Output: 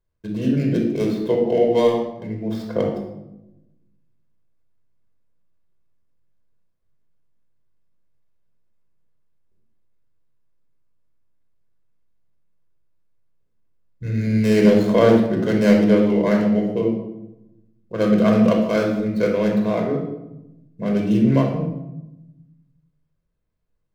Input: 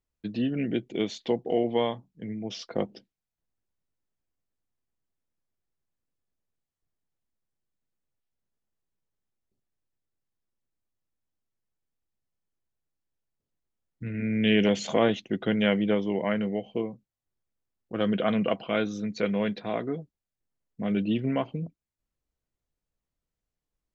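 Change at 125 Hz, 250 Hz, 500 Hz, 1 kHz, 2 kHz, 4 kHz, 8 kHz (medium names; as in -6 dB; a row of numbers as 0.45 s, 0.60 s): +11.5 dB, +9.5 dB, +9.5 dB, +6.0 dB, +3.5 dB, -0.5 dB, no reading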